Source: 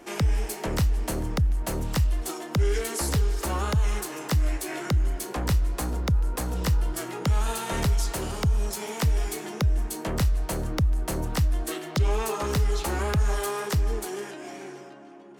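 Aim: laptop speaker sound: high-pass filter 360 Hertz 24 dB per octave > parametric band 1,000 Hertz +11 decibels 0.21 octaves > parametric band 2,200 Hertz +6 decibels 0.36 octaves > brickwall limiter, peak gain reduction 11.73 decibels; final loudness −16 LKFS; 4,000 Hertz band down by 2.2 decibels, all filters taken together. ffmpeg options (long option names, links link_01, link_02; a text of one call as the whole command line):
ffmpeg -i in.wav -af "highpass=frequency=360:width=0.5412,highpass=frequency=360:width=1.3066,equalizer=frequency=1000:width_type=o:width=0.21:gain=11,equalizer=frequency=2200:width_type=o:width=0.36:gain=6,equalizer=frequency=4000:width_type=o:gain=-3.5,volume=20.5dB,alimiter=limit=-5.5dB:level=0:latency=1" out.wav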